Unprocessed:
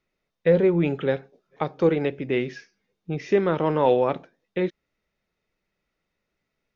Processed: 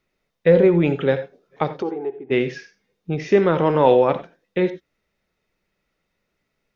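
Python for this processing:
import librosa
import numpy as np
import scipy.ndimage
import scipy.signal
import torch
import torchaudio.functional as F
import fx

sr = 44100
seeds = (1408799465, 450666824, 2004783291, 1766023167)

y = fx.double_bandpass(x, sr, hz=560.0, octaves=0.98, at=(1.81, 2.3), fade=0.02)
y = fx.rev_gated(y, sr, seeds[0], gate_ms=110, shape='rising', drr_db=11.5)
y = F.gain(torch.from_numpy(y), 4.5).numpy()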